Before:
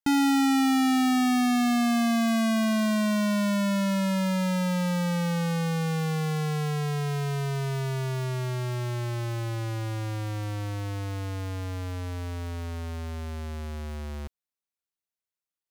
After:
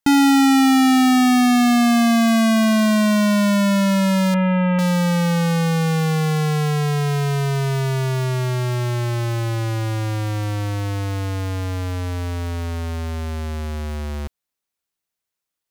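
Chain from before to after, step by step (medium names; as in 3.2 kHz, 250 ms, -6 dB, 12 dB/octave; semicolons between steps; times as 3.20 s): 4.34–4.79 s: steep low-pass 2.9 kHz 48 dB/octave; trim +8.5 dB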